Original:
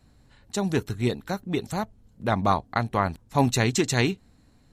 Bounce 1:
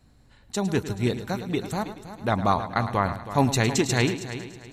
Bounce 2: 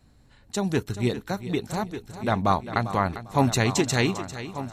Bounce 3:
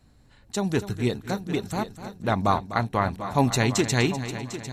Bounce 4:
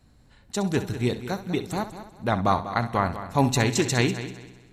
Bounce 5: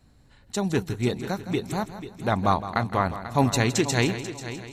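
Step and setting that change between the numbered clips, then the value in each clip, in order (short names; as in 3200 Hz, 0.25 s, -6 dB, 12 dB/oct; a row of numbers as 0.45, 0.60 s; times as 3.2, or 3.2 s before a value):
multi-head echo, time: 107, 398, 250, 65, 163 ms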